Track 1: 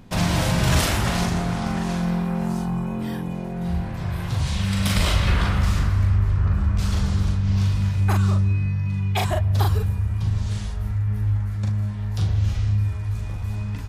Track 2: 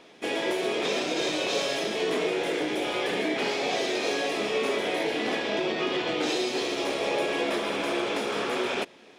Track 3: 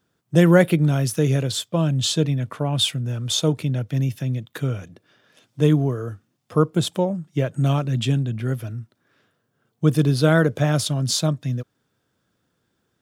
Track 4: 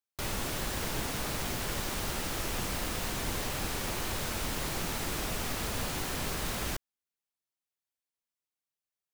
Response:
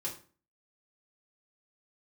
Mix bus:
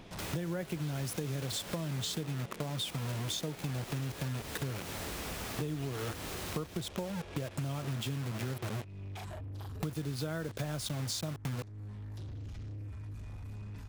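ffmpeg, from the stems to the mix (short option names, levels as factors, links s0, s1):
-filter_complex "[0:a]acompressor=threshold=0.1:ratio=6,volume=0.422[s0];[1:a]volume=0.668[s1];[2:a]acrusher=bits=4:mix=0:aa=0.000001,volume=1.19[s2];[3:a]volume=0.708,asplit=3[s3][s4][s5];[s3]atrim=end=2.21,asetpts=PTS-STARTPTS,afade=t=out:st=2.206:d=0.004:c=hsin[s6];[s4]atrim=start=2.21:end=2.79,asetpts=PTS-STARTPTS,volume=0[s7];[s5]atrim=start=2.79,asetpts=PTS-STARTPTS,afade=t=in:d=0.004:c=hsin[s8];[s6][s7][s8]concat=n=3:v=0:a=1[s9];[s2][s9]amix=inputs=2:normalize=0,highpass=59,acompressor=threshold=0.0708:ratio=4,volume=1[s10];[s0][s1]amix=inputs=2:normalize=0,asoftclip=type=tanh:threshold=0.02,alimiter=level_in=6.31:limit=0.0631:level=0:latency=1,volume=0.158,volume=1[s11];[s10][s11]amix=inputs=2:normalize=0,acompressor=threshold=0.0141:ratio=3"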